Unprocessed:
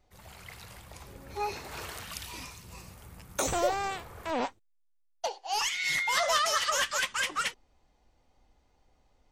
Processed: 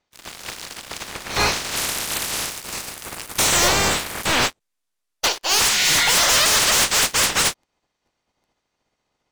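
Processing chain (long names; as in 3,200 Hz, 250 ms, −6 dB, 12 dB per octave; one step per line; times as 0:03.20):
ceiling on every frequency bin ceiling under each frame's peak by 26 dB
low-pass filter 7,100 Hz 12 dB per octave, from 0:01.76 12,000 Hz
leveller curve on the samples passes 5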